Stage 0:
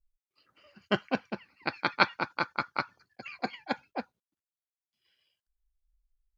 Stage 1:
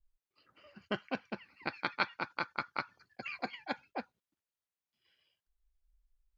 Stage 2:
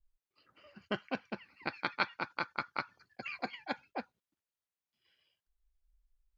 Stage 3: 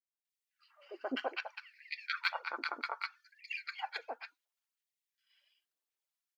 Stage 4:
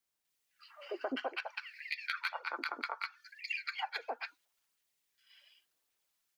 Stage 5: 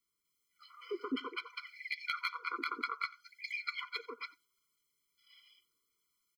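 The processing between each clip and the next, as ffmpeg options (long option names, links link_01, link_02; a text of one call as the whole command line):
ffmpeg -i in.wav -af "highshelf=frequency=4000:gain=-8.5,acompressor=threshold=-42dB:ratio=2,adynamicequalizer=threshold=0.00282:dfrequency=1500:dqfactor=0.7:tfrequency=1500:tqfactor=0.7:attack=5:release=100:ratio=0.375:range=3:mode=boostabove:tftype=highshelf,volume=1.5dB" out.wav
ffmpeg -i in.wav -af anull out.wav
ffmpeg -i in.wav -filter_complex "[0:a]aphaser=in_gain=1:out_gain=1:delay=4.5:decay=0.41:speed=0.88:type=sinusoidal,acrossover=split=420|1300[link_01][link_02][link_03];[link_02]adelay=130[link_04];[link_03]adelay=250[link_05];[link_01][link_04][link_05]amix=inputs=3:normalize=0,afftfilt=real='re*gte(b*sr/1024,230*pow(1800/230,0.5+0.5*sin(2*PI*0.65*pts/sr)))':imag='im*gte(b*sr/1024,230*pow(1800/230,0.5+0.5*sin(2*PI*0.65*pts/sr)))':win_size=1024:overlap=0.75,volume=1dB" out.wav
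ffmpeg -i in.wav -filter_complex "[0:a]acrossover=split=300|350|3200[link_01][link_02][link_03][link_04];[link_04]asoftclip=type=tanh:threshold=-38.5dB[link_05];[link_01][link_02][link_03][link_05]amix=inputs=4:normalize=0,acompressor=threshold=-46dB:ratio=4,volume=10dB" out.wav
ffmpeg -i in.wav -af "aecho=1:1:89:0.0708,afftfilt=real='re*eq(mod(floor(b*sr/1024/490),2),0)':imag='im*eq(mod(floor(b*sr/1024/490),2),0)':win_size=1024:overlap=0.75,volume=3dB" out.wav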